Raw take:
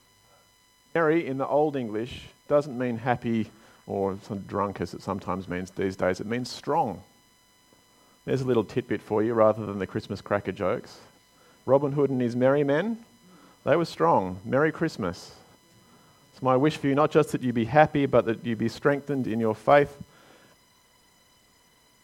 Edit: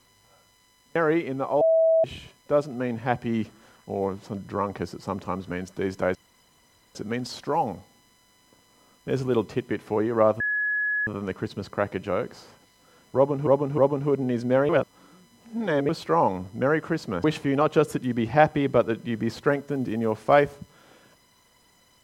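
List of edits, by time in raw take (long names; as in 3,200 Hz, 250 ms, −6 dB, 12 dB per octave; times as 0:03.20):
0:01.61–0:02.04: beep over 650 Hz −16 dBFS
0:06.15: splice in room tone 0.80 s
0:09.60: insert tone 1,690 Hz −22.5 dBFS 0.67 s
0:11.69–0:12.00: repeat, 3 plays
0:12.60–0:13.80: reverse
0:15.15–0:16.63: remove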